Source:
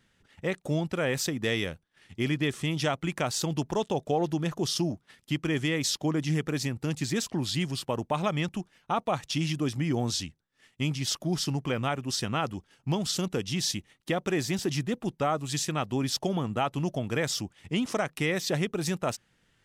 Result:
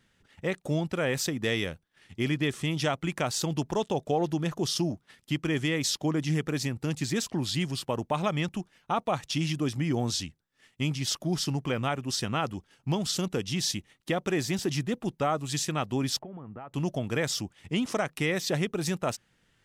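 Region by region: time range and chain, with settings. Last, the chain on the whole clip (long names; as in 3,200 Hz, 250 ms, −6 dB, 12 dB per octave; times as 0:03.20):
0:16.19–0:16.74: low-pass filter 2,000 Hz 24 dB per octave + downward compressor 5 to 1, threshold −40 dBFS
whole clip: no processing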